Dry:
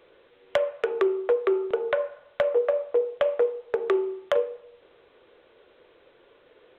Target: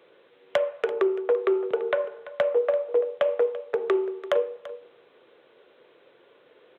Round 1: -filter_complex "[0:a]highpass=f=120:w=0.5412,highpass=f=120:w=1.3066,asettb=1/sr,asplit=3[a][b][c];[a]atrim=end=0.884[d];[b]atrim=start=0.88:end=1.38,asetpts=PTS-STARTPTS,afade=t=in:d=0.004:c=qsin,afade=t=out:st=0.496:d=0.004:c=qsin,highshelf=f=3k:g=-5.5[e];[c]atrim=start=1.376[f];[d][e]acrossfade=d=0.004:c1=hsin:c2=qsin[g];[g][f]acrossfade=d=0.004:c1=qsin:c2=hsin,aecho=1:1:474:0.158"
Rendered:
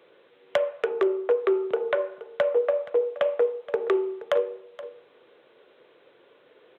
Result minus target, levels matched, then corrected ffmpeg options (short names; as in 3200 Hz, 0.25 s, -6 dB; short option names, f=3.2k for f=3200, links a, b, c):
echo 0.136 s late
-filter_complex "[0:a]highpass=f=120:w=0.5412,highpass=f=120:w=1.3066,asettb=1/sr,asplit=3[a][b][c];[a]atrim=end=0.884[d];[b]atrim=start=0.88:end=1.38,asetpts=PTS-STARTPTS,afade=t=in:d=0.004:c=qsin,afade=t=out:st=0.496:d=0.004:c=qsin,highshelf=f=3k:g=-5.5[e];[c]atrim=start=1.376[f];[d][e]acrossfade=d=0.004:c1=hsin:c2=qsin[g];[g][f]acrossfade=d=0.004:c1=qsin:c2=hsin,aecho=1:1:338:0.158"